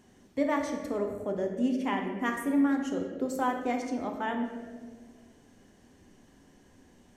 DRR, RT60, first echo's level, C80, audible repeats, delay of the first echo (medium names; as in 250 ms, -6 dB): 2.5 dB, 1.7 s, no echo, 7.0 dB, no echo, no echo